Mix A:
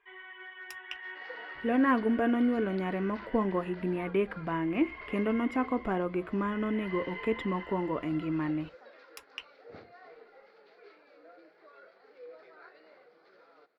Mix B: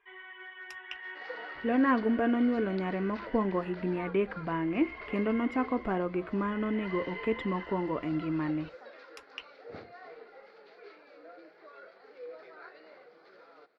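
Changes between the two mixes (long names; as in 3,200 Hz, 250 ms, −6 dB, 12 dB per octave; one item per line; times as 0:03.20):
speech: add high-frequency loss of the air 59 metres
second sound +4.0 dB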